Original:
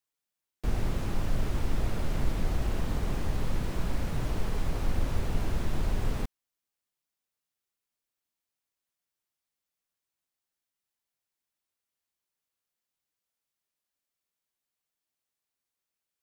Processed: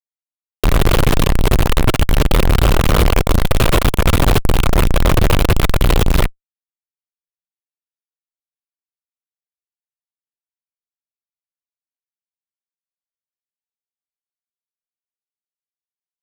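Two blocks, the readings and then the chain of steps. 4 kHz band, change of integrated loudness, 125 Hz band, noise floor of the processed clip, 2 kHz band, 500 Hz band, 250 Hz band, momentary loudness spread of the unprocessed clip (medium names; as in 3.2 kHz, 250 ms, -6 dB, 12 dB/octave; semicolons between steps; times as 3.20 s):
+23.0 dB, +18.0 dB, +17.0 dB, under -85 dBFS, +21.0 dB, +20.5 dB, +16.5 dB, 2 LU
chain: static phaser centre 1.2 kHz, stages 8; fuzz box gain 53 dB, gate -54 dBFS; trim +4 dB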